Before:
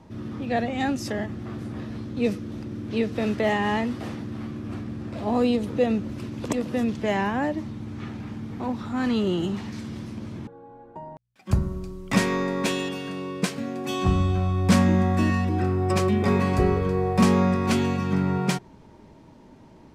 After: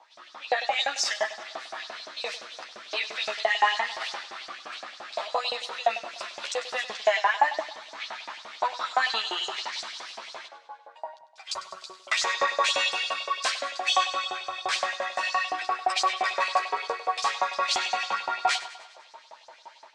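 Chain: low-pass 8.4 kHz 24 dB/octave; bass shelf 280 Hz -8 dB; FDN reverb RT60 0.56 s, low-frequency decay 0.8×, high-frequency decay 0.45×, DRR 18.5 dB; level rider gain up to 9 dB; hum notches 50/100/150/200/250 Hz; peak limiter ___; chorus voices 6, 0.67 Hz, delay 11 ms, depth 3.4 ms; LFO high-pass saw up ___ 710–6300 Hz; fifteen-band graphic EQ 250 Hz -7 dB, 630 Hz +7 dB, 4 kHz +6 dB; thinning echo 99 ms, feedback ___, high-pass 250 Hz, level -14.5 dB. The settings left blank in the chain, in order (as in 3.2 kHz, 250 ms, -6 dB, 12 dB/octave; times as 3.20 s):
-14 dBFS, 5.8 Hz, 56%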